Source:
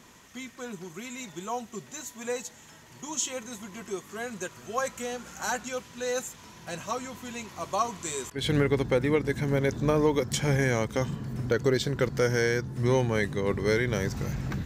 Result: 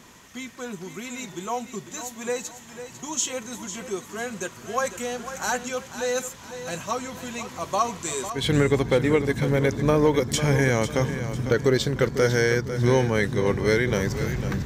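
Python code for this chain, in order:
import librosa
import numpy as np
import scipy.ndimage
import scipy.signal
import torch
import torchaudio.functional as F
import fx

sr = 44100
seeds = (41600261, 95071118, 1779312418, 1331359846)

y = fx.echo_feedback(x, sr, ms=499, feedback_pct=36, wet_db=-11.0)
y = F.gain(torch.from_numpy(y), 4.0).numpy()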